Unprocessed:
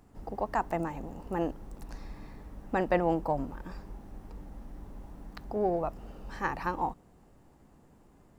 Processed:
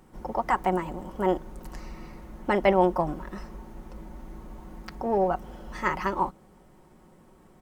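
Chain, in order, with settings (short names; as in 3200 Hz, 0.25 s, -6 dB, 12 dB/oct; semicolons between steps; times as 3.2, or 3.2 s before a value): low shelf 120 Hz -4 dB; comb 6 ms, depth 45%; varispeed +10%; gain +4.5 dB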